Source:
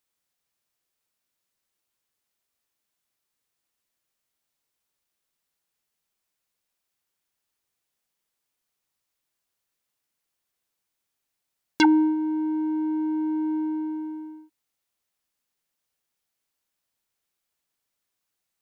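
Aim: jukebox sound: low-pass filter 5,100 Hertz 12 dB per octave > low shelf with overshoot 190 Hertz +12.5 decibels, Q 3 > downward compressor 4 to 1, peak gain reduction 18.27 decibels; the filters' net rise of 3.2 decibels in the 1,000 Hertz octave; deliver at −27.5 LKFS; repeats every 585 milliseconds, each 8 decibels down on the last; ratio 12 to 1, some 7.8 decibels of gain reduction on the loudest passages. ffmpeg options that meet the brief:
ffmpeg -i in.wav -af "equalizer=frequency=1000:width_type=o:gain=4,acompressor=threshold=-20dB:ratio=12,lowpass=5100,lowshelf=frequency=190:width_type=q:width=3:gain=12.5,aecho=1:1:585|1170|1755|2340|2925:0.398|0.159|0.0637|0.0255|0.0102,acompressor=threshold=-43dB:ratio=4,volume=16dB" out.wav

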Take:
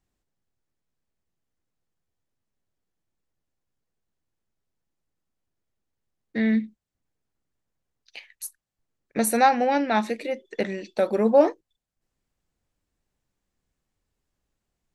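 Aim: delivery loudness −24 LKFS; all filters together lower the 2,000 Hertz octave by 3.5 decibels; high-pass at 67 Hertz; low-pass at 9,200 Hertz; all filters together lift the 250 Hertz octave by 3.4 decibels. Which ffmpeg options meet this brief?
ffmpeg -i in.wav -af "highpass=67,lowpass=9200,equalizer=frequency=250:width_type=o:gain=4,equalizer=frequency=2000:width_type=o:gain=-4.5,volume=-1.5dB" out.wav

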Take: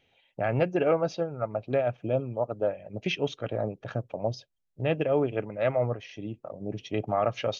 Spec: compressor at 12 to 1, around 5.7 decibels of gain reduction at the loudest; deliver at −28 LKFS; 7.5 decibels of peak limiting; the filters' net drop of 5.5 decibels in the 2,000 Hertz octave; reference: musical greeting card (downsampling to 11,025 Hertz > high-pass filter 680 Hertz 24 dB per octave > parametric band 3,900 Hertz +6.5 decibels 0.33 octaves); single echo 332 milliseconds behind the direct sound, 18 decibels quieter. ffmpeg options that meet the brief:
ffmpeg -i in.wav -af "equalizer=frequency=2000:width_type=o:gain=-8,acompressor=threshold=-26dB:ratio=12,alimiter=level_in=1dB:limit=-24dB:level=0:latency=1,volume=-1dB,aecho=1:1:332:0.126,aresample=11025,aresample=44100,highpass=frequency=680:width=0.5412,highpass=frequency=680:width=1.3066,equalizer=frequency=3900:width_type=o:width=0.33:gain=6.5,volume=15.5dB" out.wav

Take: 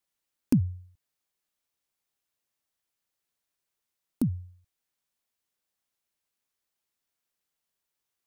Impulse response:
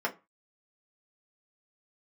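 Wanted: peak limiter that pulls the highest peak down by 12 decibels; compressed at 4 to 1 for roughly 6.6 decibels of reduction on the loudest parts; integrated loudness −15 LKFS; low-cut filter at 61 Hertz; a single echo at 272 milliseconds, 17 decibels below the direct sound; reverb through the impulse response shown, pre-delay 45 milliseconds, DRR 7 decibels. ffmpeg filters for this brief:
-filter_complex "[0:a]highpass=61,acompressor=threshold=-25dB:ratio=4,alimiter=level_in=1.5dB:limit=-24dB:level=0:latency=1,volume=-1.5dB,aecho=1:1:272:0.141,asplit=2[link_01][link_02];[1:a]atrim=start_sample=2205,adelay=45[link_03];[link_02][link_03]afir=irnorm=-1:irlink=0,volume=-15dB[link_04];[link_01][link_04]amix=inputs=2:normalize=0,volume=23.5dB"

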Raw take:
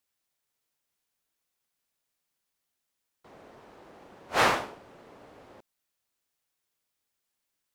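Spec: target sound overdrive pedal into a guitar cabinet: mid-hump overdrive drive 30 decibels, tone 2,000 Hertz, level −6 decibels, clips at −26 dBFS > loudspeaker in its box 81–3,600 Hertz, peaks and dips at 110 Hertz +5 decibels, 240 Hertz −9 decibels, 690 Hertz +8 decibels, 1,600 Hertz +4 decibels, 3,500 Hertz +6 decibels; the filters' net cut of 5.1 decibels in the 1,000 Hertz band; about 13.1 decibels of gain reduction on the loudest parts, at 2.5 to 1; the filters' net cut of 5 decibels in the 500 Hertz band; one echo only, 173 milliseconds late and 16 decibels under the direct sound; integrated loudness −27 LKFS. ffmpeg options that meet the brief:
ffmpeg -i in.wav -filter_complex "[0:a]equalizer=frequency=500:width_type=o:gain=-8.5,equalizer=frequency=1000:width_type=o:gain=-7.5,acompressor=threshold=-43dB:ratio=2.5,aecho=1:1:173:0.158,asplit=2[link_01][link_02];[link_02]highpass=frequency=720:poles=1,volume=30dB,asoftclip=type=tanh:threshold=-26dB[link_03];[link_01][link_03]amix=inputs=2:normalize=0,lowpass=frequency=2000:poles=1,volume=-6dB,highpass=81,equalizer=frequency=110:width_type=q:width=4:gain=5,equalizer=frequency=240:width_type=q:width=4:gain=-9,equalizer=frequency=690:width_type=q:width=4:gain=8,equalizer=frequency=1600:width_type=q:width=4:gain=4,equalizer=frequency=3500:width_type=q:width=4:gain=6,lowpass=frequency=3600:width=0.5412,lowpass=frequency=3600:width=1.3066,volume=9.5dB" out.wav

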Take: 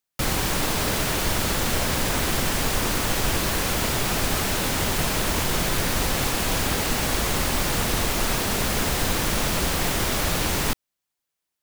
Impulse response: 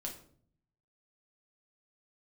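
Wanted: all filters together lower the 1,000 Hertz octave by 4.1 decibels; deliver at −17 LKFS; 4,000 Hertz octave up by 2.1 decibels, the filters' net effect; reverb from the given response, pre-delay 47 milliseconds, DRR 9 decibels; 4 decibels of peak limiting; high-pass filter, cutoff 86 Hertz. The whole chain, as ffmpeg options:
-filter_complex "[0:a]highpass=86,equalizer=frequency=1000:width_type=o:gain=-5.5,equalizer=frequency=4000:width_type=o:gain=3,alimiter=limit=-16dB:level=0:latency=1,asplit=2[link_01][link_02];[1:a]atrim=start_sample=2205,adelay=47[link_03];[link_02][link_03]afir=irnorm=-1:irlink=0,volume=-7.5dB[link_04];[link_01][link_04]amix=inputs=2:normalize=0,volume=7dB"

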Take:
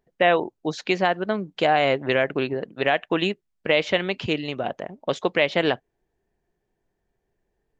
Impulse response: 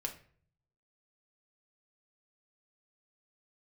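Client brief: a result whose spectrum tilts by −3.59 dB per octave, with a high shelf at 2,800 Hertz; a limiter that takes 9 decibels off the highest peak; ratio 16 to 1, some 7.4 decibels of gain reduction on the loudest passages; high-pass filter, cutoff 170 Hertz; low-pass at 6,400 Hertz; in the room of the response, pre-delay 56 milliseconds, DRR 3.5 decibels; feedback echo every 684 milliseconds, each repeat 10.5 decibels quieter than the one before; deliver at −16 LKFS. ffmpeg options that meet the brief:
-filter_complex "[0:a]highpass=170,lowpass=6400,highshelf=frequency=2800:gain=-7,acompressor=threshold=-22dB:ratio=16,alimiter=limit=-20dB:level=0:latency=1,aecho=1:1:684|1368|2052:0.299|0.0896|0.0269,asplit=2[link_01][link_02];[1:a]atrim=start_sample=2205,adelay=56[link_03];[link_02][link_03]afir=irnorm=-1:irlink=0,volume=-3.5dB[link_04];[link_01][link_04]amix=inputs=2:normalize=0,volume=15dB"

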